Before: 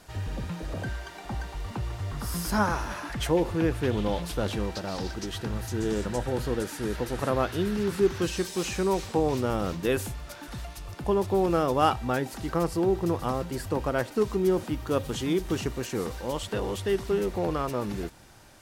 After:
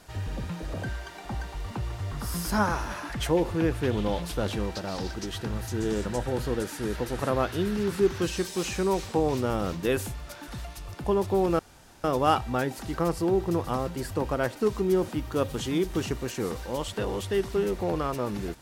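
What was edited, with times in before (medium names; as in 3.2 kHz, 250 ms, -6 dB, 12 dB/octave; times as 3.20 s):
11.59 s: insert room tone 0.45 s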